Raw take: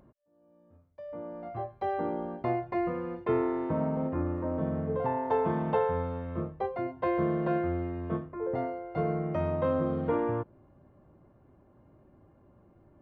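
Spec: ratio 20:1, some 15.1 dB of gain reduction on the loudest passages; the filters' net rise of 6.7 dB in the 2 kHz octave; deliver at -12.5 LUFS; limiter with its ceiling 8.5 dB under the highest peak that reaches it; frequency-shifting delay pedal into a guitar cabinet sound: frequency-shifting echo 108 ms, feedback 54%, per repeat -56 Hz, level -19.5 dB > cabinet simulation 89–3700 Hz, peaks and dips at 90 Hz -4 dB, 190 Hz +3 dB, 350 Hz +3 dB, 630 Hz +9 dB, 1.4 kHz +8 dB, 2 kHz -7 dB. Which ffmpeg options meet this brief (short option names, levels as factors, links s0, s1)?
-filter_complex "[0:a]equalizer=f=2000:t=o:g=8,acompressor=threshold=0.0141:ratio=20,alimiter=level_in=2.99:limit=0.0631:level=0:latency=1,volume=0.335,asplit=5[s0][s1][s2][s3][s4];[s1]adelay=108,afreqshift=-56,volume=0.106[s5];[s2]adelay=216,afreqshift=-112,volume=0.0569[s6];[s3]adelay=324,afreqshift=-168,volume=0.0309[s7];[s4]adelay=432,afreqshift=-224,volume=0.0166[s8];[s0][s5][s6][s7][s8]amix=inputs=5:normalize=0,highpass=89,equalizer=f=90:t=q:w=4:g=-4,equalizer=f=190:t=q:w=4:g=3,equalizer=f=350:t=q:w=4:g=3,equalizer=f=630:t=q:w=4:g=9,equalizer=f=1400:t=q:w=4:g=8,equalizer=f=2000:t=q:w=4:g=-7,lowpass=f=3700:w=0.5412,lowpass=f=3700:w=1.3066,volume=22.4"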